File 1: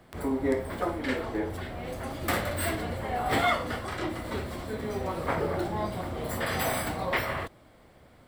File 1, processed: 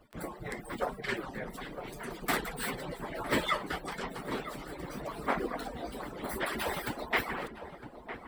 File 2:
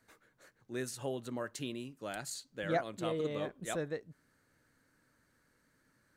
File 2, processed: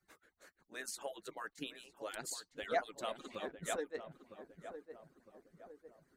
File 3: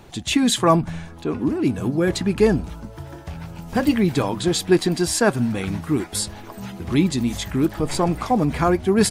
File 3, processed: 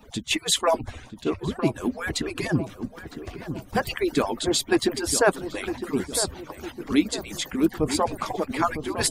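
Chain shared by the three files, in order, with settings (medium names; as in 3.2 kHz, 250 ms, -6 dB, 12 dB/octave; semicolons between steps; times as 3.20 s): harmonic-percussive separation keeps percussive; filtered feedback delay 958 ms, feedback 50%, low-pass 1.1 kHz, level -9 dB; attacks held to a fixed rise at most 520 dB/s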